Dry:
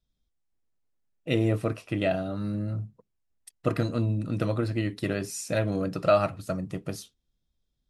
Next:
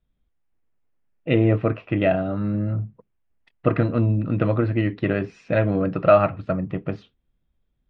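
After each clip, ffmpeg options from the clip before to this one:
-af "lowpass=f=2.7k:w=0.5412,lowpass=f=2.7k:w=1.3066,volume=6.5dB"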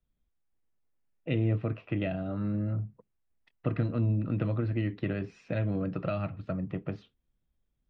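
-filter_complex "[0:a]acrossover=split=250|3000[a][b][c];[b]acompressor=threshold=-28dB:ratio=5[d];[a][d][c]amix=inputs=3:normalize=0,volume=-6.5dB"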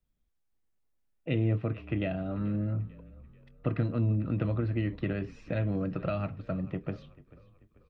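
-filter_complex "[0:a]asplit=5[a][b][c][d][e];[b]adelay=439,afreqshift=-37,volume=-20dB[f];[c]adelay=878,afreqshift=-74,volume=-26.4dB[g];[d]adelay=1317,afreqshift=-111,volume=-32.8dB[h];[e]adelay=1756,afreqshift=-148,volume=-39.1dB[i];[a][f][g][h][i]amix=inputs=5:normalize=0"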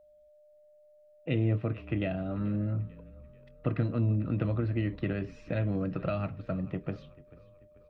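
-af "aeval=exprs='val(0)+0.00141*sin(2*PI*600*n/s)':c=same"

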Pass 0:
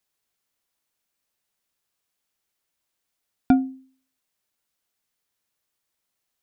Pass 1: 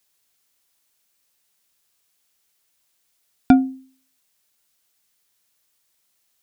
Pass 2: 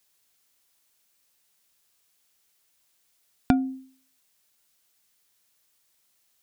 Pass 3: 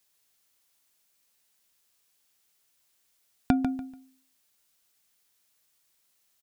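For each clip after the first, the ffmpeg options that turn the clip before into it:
-af "highshelf=f=2.5k:g=7.5,volume=4.5dB"
-af "acompressor=threshold=-18dB:ratio=6"
-af "aecho=1:1:145|290|435:0.376|0.0902|0.0216,volume=-2.5dB"

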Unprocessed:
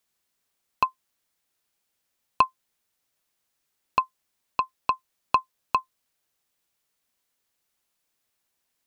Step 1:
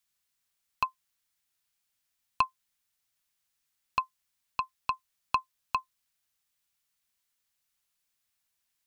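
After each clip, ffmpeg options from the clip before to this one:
-af "equalizer=f=420:t=o:w=2.1:g=-11.5,volume=-2dB"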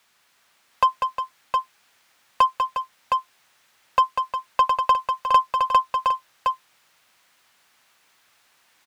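-filter_complex "[0:a]asplit=2[a][b];[b]highpass=f=720:p=1,volume=32dB,asoftclip=type=tanh:threshold=-9.5dB[c];[a][c]amix=inputs=2:normalize=0,lowpass=f=1k:p=1,volume=-6dB,asplit=2[d][e];[e]aecho=0:1:195|357|714:0.473|0.316|0.596[f];[d][f]amix=inputs=2:normalize=0,volume=5dB"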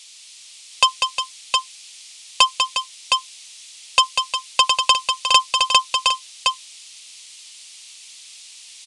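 -af "aexciter=amount=5.9:drive=9.8:freq=2.4k,aresample=22050,aresample=44100,volume=-1dB"

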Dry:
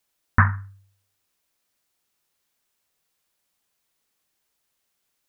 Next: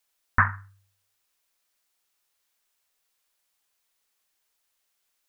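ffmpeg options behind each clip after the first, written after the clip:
-af "equalizer=f=150:t=o:w=2.7:g=-11.5"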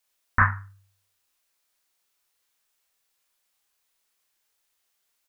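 -filter_complex "[0:a]asplit=2[a][b];[b]adelay=31,volume=-2.5dB[c];[a][c]amix=inputs=2:normalize=0,volume=-1dB"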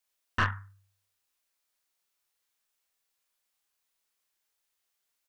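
-af "aeval=exprs='(tanh(5.62*val(0)+0.6)-tanh(0.6))/5.62':c=same,volume=-3dB"

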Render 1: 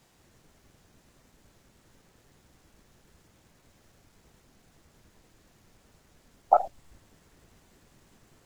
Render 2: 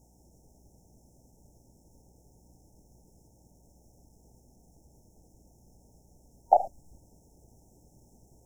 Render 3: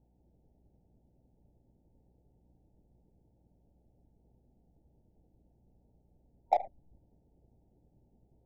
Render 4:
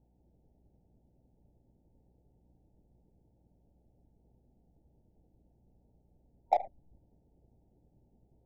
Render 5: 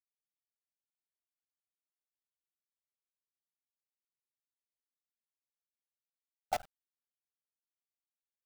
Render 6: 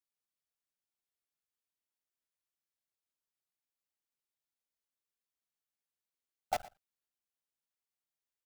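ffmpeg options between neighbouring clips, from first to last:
-af "aeval=exprs='val(0)+0.000794*(sin(2*PI*60*n/s)+sin(2*PI*2*60*n/s)/2+sin(2*PI*3*60*n/s)/3+sin(2*PI*4*60*n/s)/4+sin(2*PI*5*60*n/s)/5)':c=same,afftfilt=real='re*(1-between(b*sr/4096,930,5200))':imag='im*(1-between(b*sr/4096,930,5200))':win_size=4096:overlap=0.75"
-af "adynamicsmooth=sensitivity=1.5:basefreq=1k,volume=-7dB"
-af anull
-af "acrusher=bits=5:dc=4:mix=0:aa=0.000001,volume=-8dB"
-af "aecho=1:1:117:0.106"

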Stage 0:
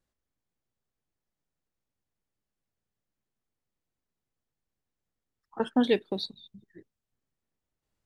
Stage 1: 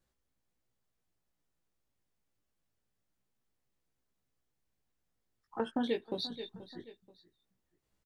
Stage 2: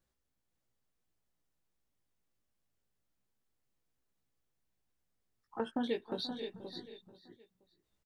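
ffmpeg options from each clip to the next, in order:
-af "flanger=delay=15.5:depth=2.1:speed=0.25,aecho=1:1:481|962:0.0794|0.027,acompressor=threshold=-38dB:ratio=3,volume=5dB"
-af "aecho=1:1:525:0.376,volume=-2dB"

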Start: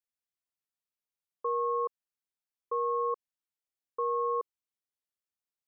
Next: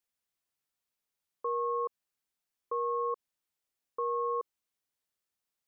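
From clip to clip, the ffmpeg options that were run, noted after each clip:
-af "alimiter=level_in=7dB:limit=-24dB:level=0:latency=1,volume=-7dB,volume=5.5dB"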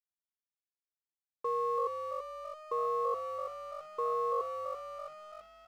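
-filter_complex "[0:a]asplit=9[a][b][c][d][e][f][g][h][i];[b]adelay=333,afreqshift=48,volume=-6dB[j];[c]adelay=666,afreqshift=96,volume=-10.7dB[k];[d]adelay=999,afreqshift=144,volume=-15.5dB[l];[e]adelay=1332,afreqshift=192,volume=-20.2dB[m];[f]adelay=1665,afreqshift=240,volume=-24.9dB[n];[g]adelay=1998,afreqshift=288,volume=-29.7dB[o];[h]adelay=2331,afreqshift=336,volume=-34.4dB[p];[i]adelay=2664,afreqshift=384,volume=-39.1dB[q];[a][j][k][l][m][n][o][p][q]amix=inputs=9:normalize=0,aeval=exprs='sgn(val(0))*max(abs(val(0))-0.00168,0)':c=same"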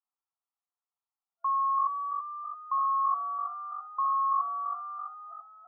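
-af "afftfilt=real='re*between(b*sr/4096,670,1400)':imag='im*between(b*sr/4096,670,1400)':win_size=4096:overlap=0.75,volume=8dB"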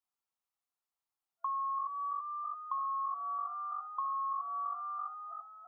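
-af "acompressor=threshold=-34dB:ratio=6"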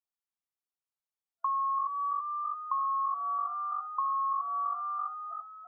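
-af "afftdn=nr=13:nf=-48,volume=5dB"

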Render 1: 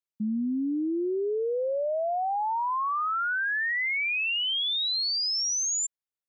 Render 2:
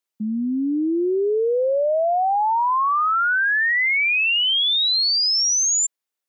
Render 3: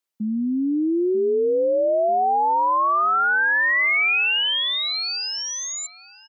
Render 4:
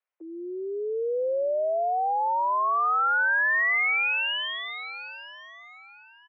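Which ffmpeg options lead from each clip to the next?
-af "highpass=260,volume=8.5dB"
-filter_complex "[0:a]acrossover=split=3000[a][b];[b]alimiter=level_in=3.5dB:limit=-24dB:level=0:latency=1:release=210,volume=-3.5dB[c];[a][c]amix=inputs=2:normalize=0,asplit=2[d][e];[e]adelay=940,lowpass=f=1.8k:p=1,volume=-14dB,asplit=2[f][g];[g]adelay=940,lowpass=f=1.8k:p=1,volume=0.38,asplit=2[h][i];[i]adelay=940,lowpass=f=1.8k:p=1,volume=0.38,asplit=2[j][k];[k]adelay=940,lowpass=f=1.8k:p=1,volume=0.38[l];[d][f][h][j][l]amix=inputs=5:normalize=0"
-filter_complex "[0:a]highpass=f=340:t=q:w=0.5412,highpass=f=340:t=q:w=1.307,lowpass=f=2.5k:t=q:w=0.5176,lowpass=f=2.5k:t=q:w=0.7071,lowpass=f=2.5k:t=q:w=1.932,afreqshift=110,acrossover=split=600|1500[a][b][c];[a]acompressor=threshold=-33dB:ratio=4[d];[b]acompressor=threshold=-30dB:ratio=4[e];[c]acompressor=threshold=-26dB:ratio=4[f];[d][e][f]amix=inputs=3:normalize=0"

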